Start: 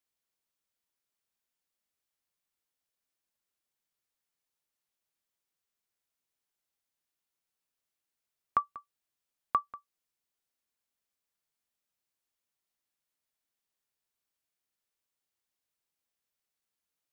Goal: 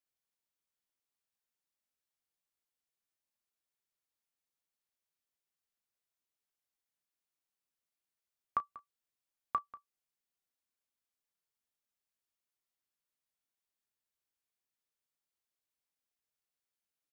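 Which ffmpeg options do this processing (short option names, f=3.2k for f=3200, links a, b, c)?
-af "aecho=1:1:17|33:0.188|0.15,volume=-5.5dB"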